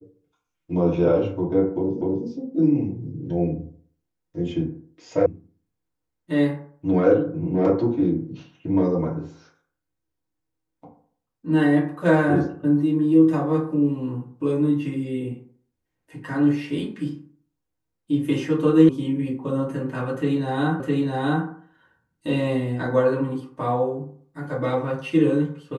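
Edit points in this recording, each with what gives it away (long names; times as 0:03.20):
0:02.01: the same again, the last 0.25 s
0:05.26: cut off before it has died away
0:18.89: cut off before it has died away
0:20.80: the same again, the last 0.66 s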